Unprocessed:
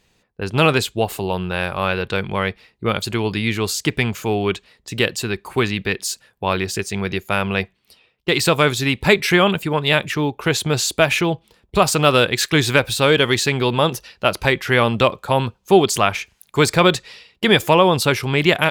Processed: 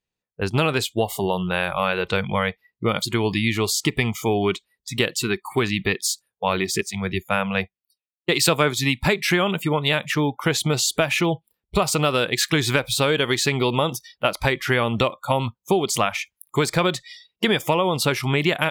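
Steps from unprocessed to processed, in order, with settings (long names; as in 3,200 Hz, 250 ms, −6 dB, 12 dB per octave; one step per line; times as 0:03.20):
noise reduction from a noise print of the clip's start 27 dB
downward compressor 6 to 1, threshold −18 dBFS, peak gain reduction 11 dB
0:06.81–0:09.03: multiband upward and downward expander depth 100%
level +1.5 dB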